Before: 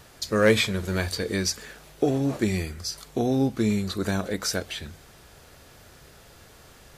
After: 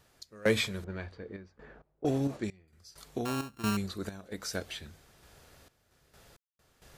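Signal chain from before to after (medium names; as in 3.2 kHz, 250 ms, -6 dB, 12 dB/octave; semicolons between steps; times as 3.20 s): 3.25–3.77 s: sorted samples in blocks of 32 samples; random-step tremolo 4.4 Hz, depth 100%; 0.84–2.68 s: level-controlled noise filter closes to 710 Hz, open at -23 dBFS; trim -4.5 dB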